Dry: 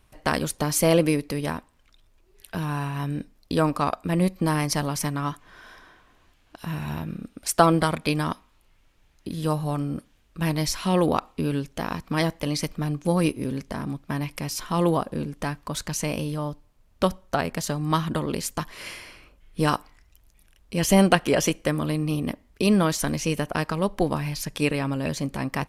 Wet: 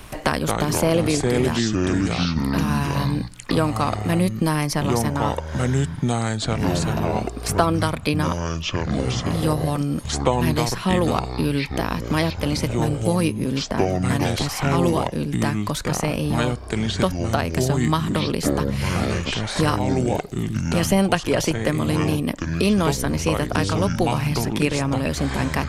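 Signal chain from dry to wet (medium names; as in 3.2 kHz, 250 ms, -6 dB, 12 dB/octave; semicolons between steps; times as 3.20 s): ever faster or slower copies 133 ms, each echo -5 st, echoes 3; three bands compressed up and down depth 70%; trim +1.5 dB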